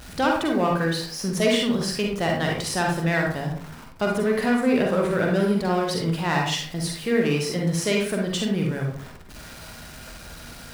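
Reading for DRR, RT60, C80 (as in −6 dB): −0.5 dB, 0.50 s, 8.5 dB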